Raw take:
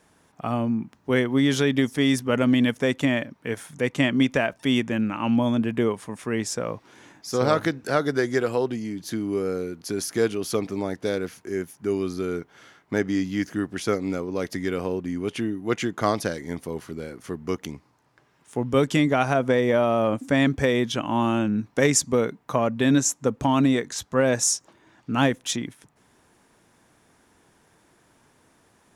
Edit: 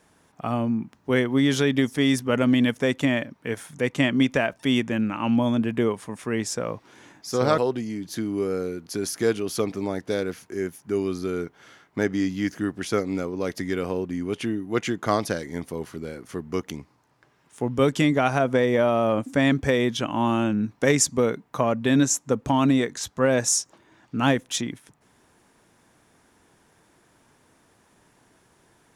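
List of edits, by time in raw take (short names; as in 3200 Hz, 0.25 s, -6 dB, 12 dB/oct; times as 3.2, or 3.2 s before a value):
7.58–8.53 cut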